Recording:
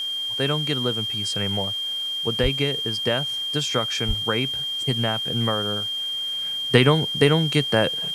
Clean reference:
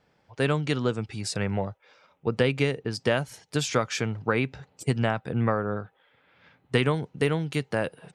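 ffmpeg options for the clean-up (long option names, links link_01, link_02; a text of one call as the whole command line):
ffmpeg -i in.wav -filter_complex "[0:a]bandreject=frequency=3200:width=30,asplit=3[link_01][link_02][link_03];[link_01]afade=type=out:start_time=2.42:duration=0.02[link_04];[link_02]highpass=frequency=140:width=0.5412,highpass=frequency=140:width=1.3066,afade=type=in:start_time=2.42:duration=0.02,afade=type=out:start_time=2.54:duration=0.02[link_05];[link_03]afade=type=in:start_time=2.54:duration=0.02[link_06];[link_04][link_05][link_06]amix=inputs=3:normalize=0,asplit=3[link_07][link_08][link_09];[link_07]afade=type=out:start_time=4.07:duration=0.02[link_10];[link_08]highpass=frequency=140:width=0.5412,highpass=frequency=140:width=1.3066,afade=type=in:start_time=4.07:duration=0.02,afade=type=out:start_time=4.19:duration=0.02[link_11];[link_09]afade=type=in:start_time=4.19:duration=0.02[link_12];[link_10][link_11][link_12]amix=inputs=3:normalize=0,afwtdn=0.005,asetnsamples=nb_out_samples=441:pad=0,asendcmd='5.96 volume volume -7dB',volume=0dB" out.wav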